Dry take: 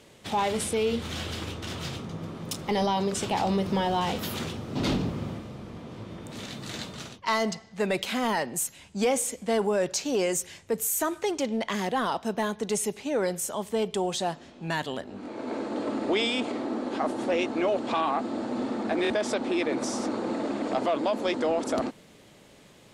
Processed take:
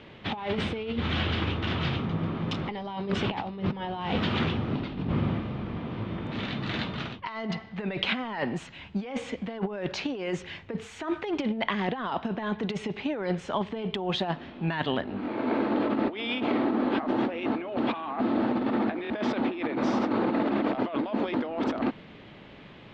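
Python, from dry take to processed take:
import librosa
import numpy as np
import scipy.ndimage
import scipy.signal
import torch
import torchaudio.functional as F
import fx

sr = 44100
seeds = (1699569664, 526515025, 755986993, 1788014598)

y = scipy.signal.sosfilt(scipy.signal.butter(4, 3300.0, 'lowpass', fs=sr, output='sos'), x)
y = fx.peak_eq(y, sr, hz=520.0, db=-4.5, octaves=0.86)
y = fx.over_compress(y, sr, threshold_db=-32.0, ratio=-0.5)
y = y * librosa.db_to_amplitude(4.5)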